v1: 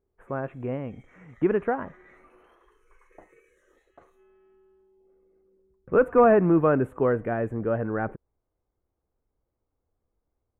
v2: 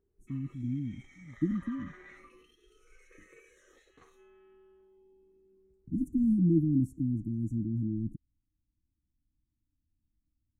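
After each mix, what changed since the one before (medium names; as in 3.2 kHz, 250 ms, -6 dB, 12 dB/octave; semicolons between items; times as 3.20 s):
speech: add brick-wall FIR band-stop 330–4300 Hz; master: add peaking EQ 5 kHz +12.5 dB 1.6 oct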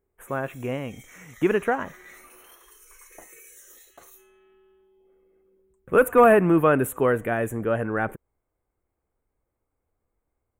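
speech: remove brick-wall FIR band-stop 330–4300 Hz; master: remove tape spacing loss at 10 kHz 27 dB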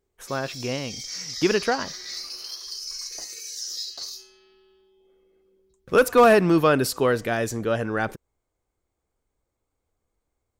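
master: remove Butterworth band-stop 4.8 kHz, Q 0.68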